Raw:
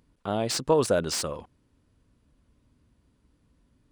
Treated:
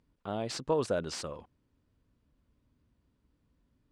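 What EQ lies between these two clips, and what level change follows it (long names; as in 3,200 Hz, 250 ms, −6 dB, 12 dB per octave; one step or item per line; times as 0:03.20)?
high-frequency loss of the air 55 metres
−7.0 dB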